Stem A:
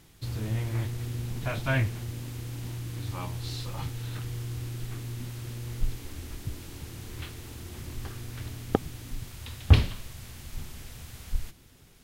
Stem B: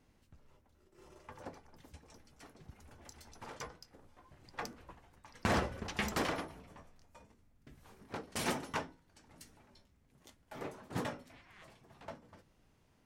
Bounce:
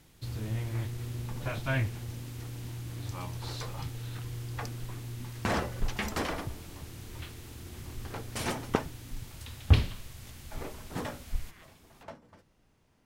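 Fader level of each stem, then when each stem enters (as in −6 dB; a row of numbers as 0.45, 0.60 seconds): −3.5, +1.5 decibels; 0.00, 0.00 seconds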